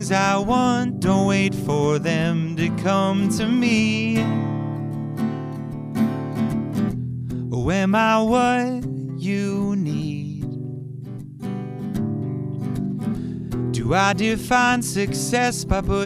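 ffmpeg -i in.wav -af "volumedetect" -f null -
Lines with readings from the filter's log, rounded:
mean_volume: -21.5 dB
max_volume: -4.2 dB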